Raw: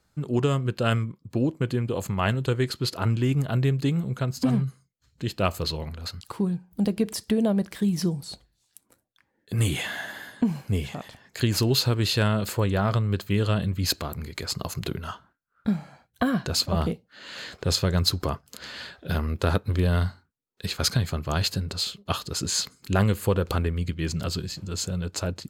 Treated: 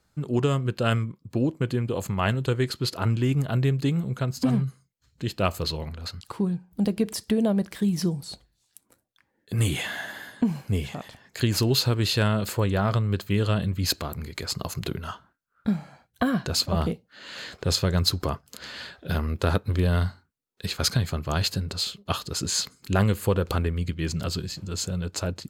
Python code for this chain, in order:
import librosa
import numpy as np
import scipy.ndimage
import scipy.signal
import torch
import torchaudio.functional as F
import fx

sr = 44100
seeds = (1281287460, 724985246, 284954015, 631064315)

y = fx.high_shelf(x, sr, hz=10000.0, db=-5.5, at=(5.89, 6.82))